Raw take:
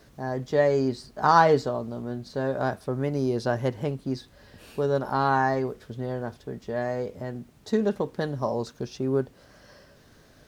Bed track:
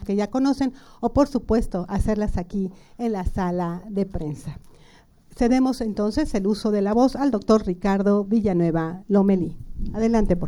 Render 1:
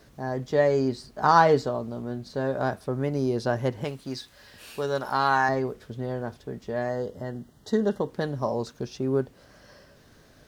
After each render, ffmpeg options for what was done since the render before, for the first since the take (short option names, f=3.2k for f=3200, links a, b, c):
-filter_complex "[0:a]asettb=1/sr,asplit=3[a][b][c];[a]atrim=end=3.844[d];[b]atrim=start=3.84:end=5.49,asetpts=PTS-STARTPTS,afade=t=in:d=0.004:c=qsin,afade=t=out:st=1.646:d=0.004:c=qsin,tiltshelf=f=820:g=-6.5[e];[c]atrim=start=5.486[f];[d][e]acrossfade=d=0.004:c1=hsin:c2=qsin[g];[g][f]acrossfade=d=0.004:c1=qsin:c2=hsin,asettb=1/sr,asplit=3[h][i][j];[h]atrim=end=6.894[k];[i]atrim=start=6.89:end=8.1,asetpts=PTS-STARTPTS,afade=t=in:d=0.004:c=qsin,afade=t=out:st=1.206:d=0.004:c=qsin,asuperstop=centerf=2400:order=20:qfactor=3.4[l];[j]atrim=start=8.096[m];[k][l]acrossfade=d=0.004:c1=hsin:c2=qsin[n];[n][m]acrossfade=d=0.004:c1=qsin:c2=hsin"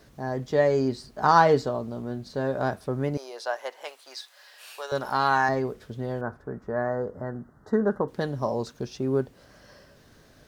-filter_complex "[0:a]asettb=1/sr,asplit=3[a][b][c];[a]atrim=end=3.174[d];[b]atrim=start=3.17:end=4.92,asetpts=PTS-STARTPTS,afade=t=in:d=0.004:c=qsin,afade=t=out:st=1.746:d=0.004:c=qsin,highpass=f=610:w=0.5412,highpass=f=610:w=1.3066[e];[c]atrim=start=4.916[f];[d][e]acrossfade=d=0.004:c1=hsin:c2=qsin[g];[g][f]acrossfade=d=0.004:c1=qsin:c2=hsin,asettb=1/sr,asplit=3[h][i][j];[h]atrim=end=6.214[k];[i]atrim=start=6.21:end=8.08,asetpts=PTS-STARTPTS,afade=t=in:d=0.004:c=qsin,afade=t=out:st=1.866:d=0.004:c=qsin,highshelf=f=2.1k:t=q:w=3:g=-13.5[l];[j]atrim=start=8.076[m];[k][l]acrossfade=d=0.004:c1=hsin:c2=qsin[n];[n][m]acrossfade=d=0.004:c1=qsin:c2=hsin"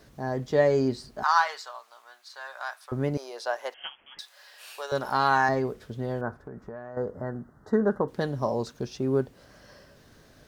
-filter_complex "[0:a]asettb=1/sr,asplit=3[a][b][c];[a]atrim=end=1.234[d];[b]atrim=start=1.23:end=2.92,asetpts=PTS-STARTPTS,afade=t=in:d=0.004:c=qsin,afade=t=out:st=1.686:d=0.004:c=qsin,highpass=f=1k:w=0.5412,highpass=f=1k:w=1.3066[e];[c]atrim=start=2.916[f];[d][e]acrossfade=d=0.004:c1=hsin:c2=qsin[g];[g][f]acrossfade=d=0.004:c1=qsin:c2=hsin,asettb=1/sr,asplit=3[h][i][j];[h]atrim=end=3.744[k];[i]atrim=start=3.74:end=4.19,asetpts=PTS-STARTPTS,afade=t=in:d=0.004:c=qsin,afade=t=out:st=0.446:d=0.004:c=qsin,lowpass=f=3.1k:t=q:w=0.5098,lowpass=f=3.1k:t=q:w=0.6013,lowpass=f=3.1k:t=q:w=0.9,lowpass=f=3.1k:t=q:w=2.563,afreqshift=-3700[l];[j]atrim=start=4.186[m];[k][l]acrossfade=d=0.004:c1=hsin:c2=qsin[n];[n][m]acrossfade=d=0.004:c1=qsin:c2=hsin,asettb=1/sr,asplit=3[o][p][q];[o]atrim=end=6.424[r];[p]atrim=start=6.42:end=6.97,asetpts=PTS-STARTPTS,afade=t=in:d=0.004:c=qsin,afade=t=out:st=0.546:d=0.004:c=qsin,acompressor=threshold=-35dB:ratio=12:attack=3.2:release=140:knee=1:detection=peak[s];[q]atrim=start=6.966[t];[r][s]acrossfade=d=0.004:c1=hsin:c2=qsin[u];[u][t]acrossfade=d=0.004:c1=qsin:c2=hsin"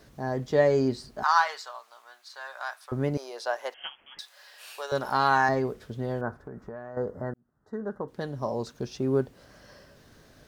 -filter_complex "[0:a]asplit=2[a][b];[a]atrim=end=7.34,asetpts=PTS-STARTPTS,afade=t=out:st=7.336:d=0.004:c=hsin[c];[b]atrim=start=7.34,asetpts=PTS-STARTPTS,afade=t=in:d=1.63[d];[c][d]concat=n=2:v=0:a=1"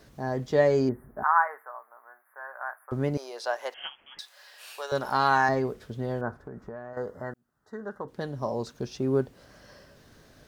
-filter_complex "[0:a]asettb=1/sr,asplit=3[a][b][c];[a]atrim=end=0.894[d];[b]atrim=start=0.89:end=2.91,asetpts=PTS-STARTPTS,afade=t=in:d=0.004:c=qsin,afade=t=out:st=2.016:d=0.004:c=qsin,asuperstop=centerf=4800:order=12:qfactor=0.54[e];[c]atrim=start=2.906[f];[d][e]acrossfade=d=0.004:c1=hsin:c2=qsin[g];[g][f]acrossfade=d=0.004:c1=qsin:c2=hsin,asettb=1/sr,asplit=3[h][i][j];[h]atrim=end=3.444[k];[i]atrim=start=3.44:end=3.86,asetpts=PTS-STARTPTS,afade=t=in:d=0.004:c=qsin,afade=t=out:st=0.416:d=0.004:c=qsin,acompressor=mode=upward:threshold=-35dB:ratio=2.5:attack=3.2:release=140:knee=2.83:detection=peak[l];[j]atrim=start=3.856[m];[k][l]acrossfade=d=0.004:c1=hsin:c2=qsin[n];[n][m]acrossfade=d=0.004:c1=qsin:c2=hsin,asettb=1/sr,asplit=3[o][p][q];[o]atrim=end=6.934[r];[p]atrim=start=6.93:end=8.05,asetpts=PTS-STARTPTS,afade=t=in:d=0.004:c=qsin,afade=t=out:st=1.116:d=0.004:c=qsin,tiltshelf=f=860:g=-6[s];[q]atrim=start=8.046[t];[r][s]acrossfade=d=0.004:c1=hsin:c2=qsin[u];[u][t]acrossfade=d=0.004:c1=qsin:c2=hsin"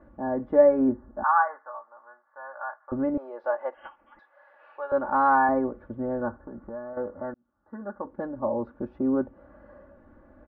-af "lowpass=f=1.4k:w=0.5412,lowpass=f=1.4k:w=1.3066,aecho=1:1:3.5:0.91"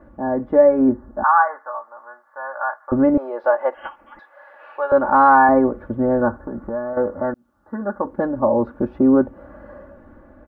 -filter_complex "[0:a]dynaudnorm=f=540:g=5:m=5dB,asplit=2[a][b];[b]alimiter=limit=-13.5dB:level=0:latency=1:release=215,volume=1dB[c];[a][c]amix=inputs=2:normalize=0"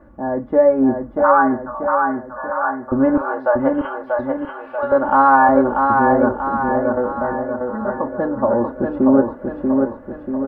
-filter_complex "[0:a]asplit=2[a][b];[b]adelay=37,volume=-14dB[c];[a][c]amix=inputs=2:normalize=0,aecho=1:1:637|1274|1911|2548|3185|3822|4459:0.631|0.334|0.177|0.0939|0.0498|0.0264|0.014"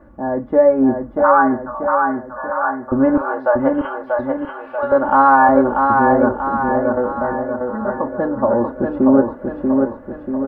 -af "volume=1dB,alimiter=limit=-1dB:level=0:latency=1"